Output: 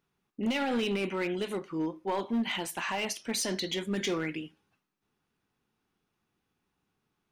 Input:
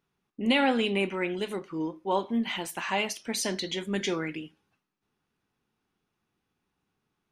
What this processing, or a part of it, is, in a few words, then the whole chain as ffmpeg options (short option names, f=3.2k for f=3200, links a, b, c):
limiter into clipper: -af "alimiter=limit=-19.5dB:level=0:latency=1:release=22,asoftclip=type=hard:threshold=-24.5dB"